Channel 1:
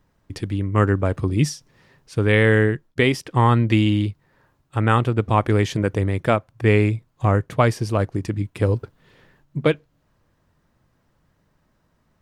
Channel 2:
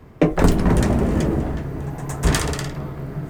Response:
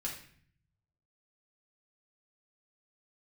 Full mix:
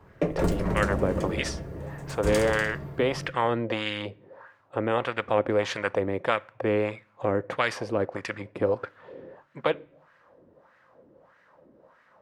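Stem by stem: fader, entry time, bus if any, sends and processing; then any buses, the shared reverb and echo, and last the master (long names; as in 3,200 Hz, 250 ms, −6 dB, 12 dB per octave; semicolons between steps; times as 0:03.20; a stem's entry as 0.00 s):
+2.0 dB, 0.00 s, send −21 dB, auto-filter band-pass sine 1.6 Hz 320–1,800 Hz; every bin compressed towards the loudest bin 2 to 1
−12.0 dB, 0.00 s, send −7.5 dB, notch comb filter 250 Hz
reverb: on, RT60 0.55 s, pre-delay 4 ms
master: parametric band 530 Hz +10 dB 0.28 octaves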